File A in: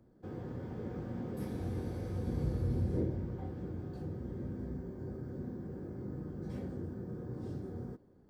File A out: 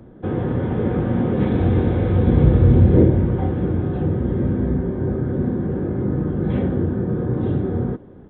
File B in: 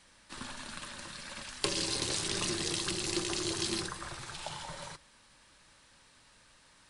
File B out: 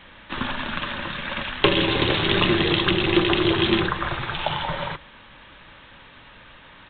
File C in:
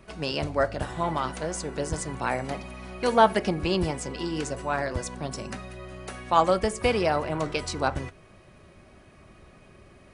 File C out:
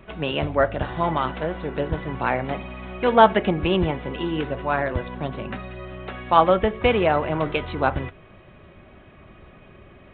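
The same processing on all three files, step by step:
downsampling to 8,000 Hz
normalise the peak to −1.5 dBFS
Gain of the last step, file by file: +20.5, +16.5, +4.5 decibels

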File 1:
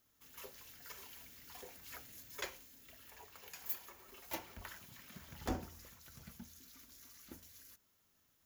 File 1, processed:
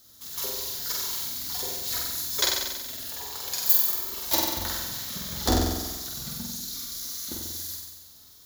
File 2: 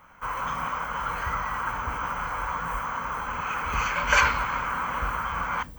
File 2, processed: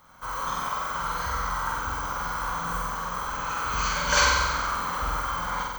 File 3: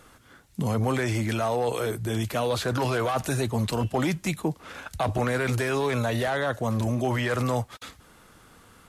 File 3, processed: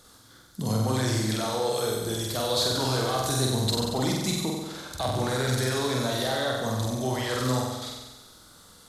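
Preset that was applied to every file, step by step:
high shelf with overshoot 3,200 Hz +6.5 dB, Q 3
flutter between parallel walls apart 8 metres, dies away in 1.2 s
loudness normalisation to −27 LKFS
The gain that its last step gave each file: +13.0, −3.0, −4.5 decibels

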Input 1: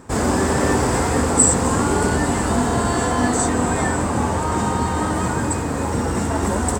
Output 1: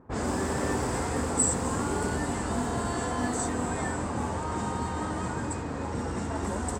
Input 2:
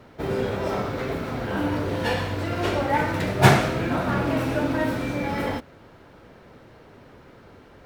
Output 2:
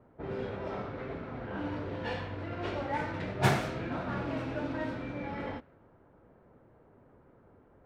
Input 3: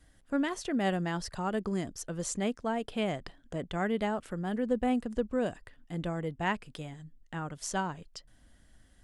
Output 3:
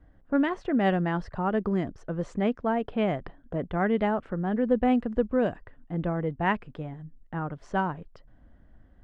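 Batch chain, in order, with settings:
low-pass that shuts in the quiet parts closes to 1,100 Hz, open at −14.5 dBFS
normalise the peak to −12 dBFS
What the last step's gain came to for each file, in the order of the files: −10.5, −11.0, +5.5 decibels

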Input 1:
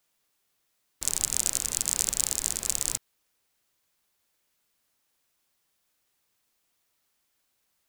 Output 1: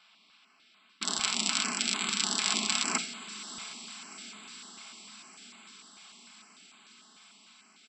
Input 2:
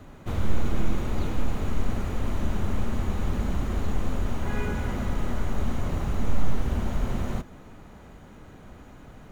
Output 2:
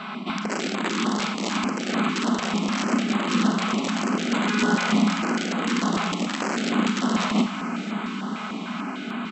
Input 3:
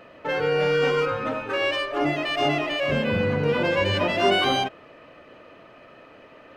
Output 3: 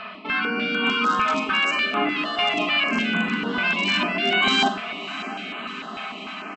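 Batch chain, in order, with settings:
sub-octave generator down 1 octave, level −4 dB
parametric band 2,000 Hz +14 dB 0.45 octaves
notch filter 890 Hz, Q 12
comb filter 4.6 ms, depth 36%
reversed playback
downward compressor 20 to 1, threshold −27 dBFS
reversed playback
phaser with its sweep stopped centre 1,900 Hz, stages 6
in parallel at −11.5 dB: wrap-around overflow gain 27 dB
on the sum: linear-phase brick-wall band-pass 180–8,000 Hz
feedback delay with all-pass diffusion 675 ms, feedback 71%, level −14.5 dB
four-comb reverb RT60 0.45 s, combs from 30 ms, DRR 8 dB
notch on a step sequencer 6.7 Hz 290–5,500 Hz
normalise the peak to −9 dBFS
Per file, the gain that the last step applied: +17.0, +19.0, +14.0 decibels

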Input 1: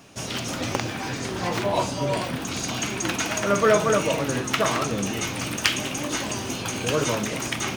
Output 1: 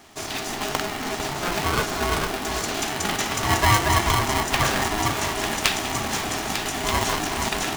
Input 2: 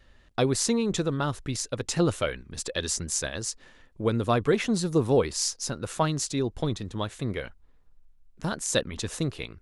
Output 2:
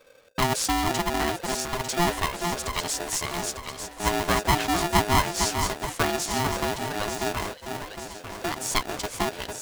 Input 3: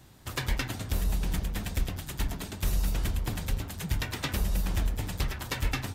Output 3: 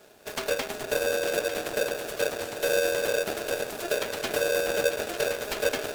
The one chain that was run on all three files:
delay that swaps between a low-pass and a high-pass 449 ms, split 1,000 Hz, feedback 72%, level −5.5 dB
ring modulator with a square carrier 520 Hz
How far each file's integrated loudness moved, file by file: +1.5, +1.5, +4.5 LU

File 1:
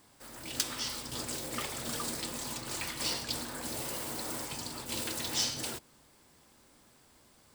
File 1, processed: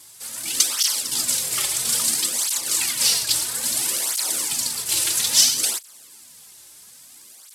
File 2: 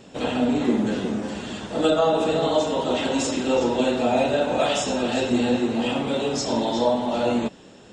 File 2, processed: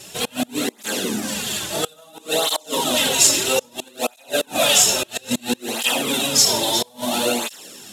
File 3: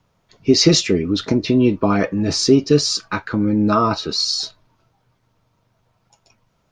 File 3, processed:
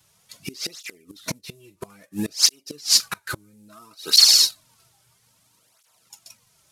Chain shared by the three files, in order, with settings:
variable-slope delta modulation 64 kbit/s
gate with flip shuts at −11 dBFS, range −30 dB
soft clipping −11 dBFS
first-order pre-emphasis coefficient 0.9
through-zero flanger with one copy inverted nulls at 0.6 Hz, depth 4.4 ms
normalise the peak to −3 dBFS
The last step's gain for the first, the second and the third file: +22.5, +22.0, +17.0 decibels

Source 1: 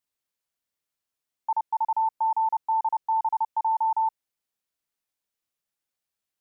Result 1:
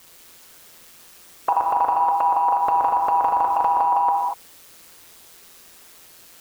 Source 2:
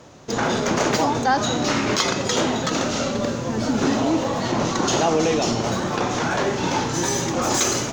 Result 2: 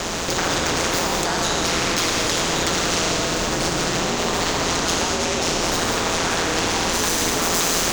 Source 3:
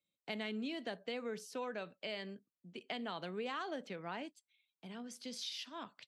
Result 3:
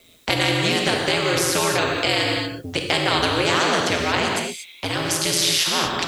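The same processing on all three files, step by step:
parametric band 440 Hz +5.5 dB 0.26 octaves
downward compressor, threshold −29 dBFS
brickwall limiter −29.5 dBFS
ring modulation 85 Hz
reverb whose tail is shaped and stops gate 260 ms flat, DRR 2 dB
every bin compressed towards the loudest bin 2 to 1
loudness normalisation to −20 LKFS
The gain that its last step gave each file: +20.0, +18.5, +24.0 decibels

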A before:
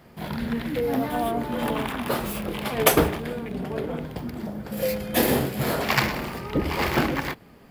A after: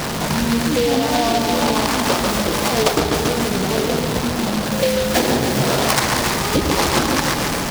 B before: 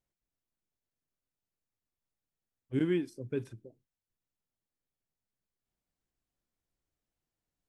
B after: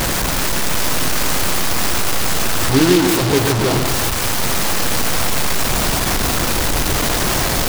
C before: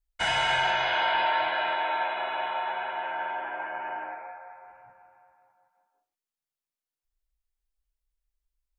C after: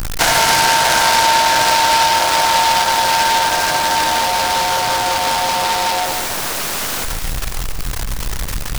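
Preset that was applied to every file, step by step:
linear delta modulator 64 kbit/s, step −28 dBFS
parametric band 1,100 Hz +3.5 dB 1.6 octaves
on a send: echo with a time of its own for lows and highs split 2,300 Hz, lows 141 ms, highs 276 ms, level −6.5 dB
on the sum: downward compressor 6 to 1, threshold −23 dBFS
short delay modulated by noise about 3,200 Hz, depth 0.089 ms
normalise the peak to −1.5 dBFS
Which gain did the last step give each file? +9.5, +16.5, +13.0 decibels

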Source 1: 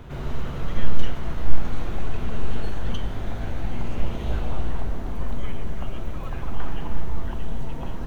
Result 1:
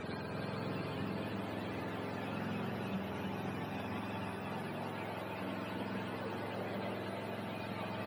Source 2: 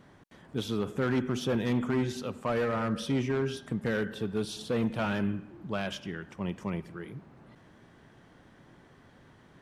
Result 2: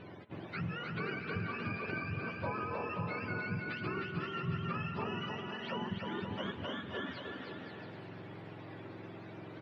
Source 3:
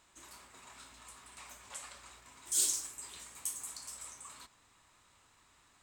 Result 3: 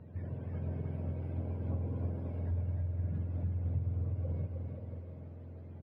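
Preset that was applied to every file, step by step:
frequency axis turned over on the octave scale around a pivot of 770 Hz
downward compressor 12 to 1, threshold −46 dBFS
high-frequency loss of the air 470 metres
bouncing-ball delay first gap 310 ms, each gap 0.7×, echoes 5
spring reverb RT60 3.6 s, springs 51 ms, chirp 45 ms, DRR 13.5 dB
level +11.5 dB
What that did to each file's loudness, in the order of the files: −8.0, −7.5, −1.5 LU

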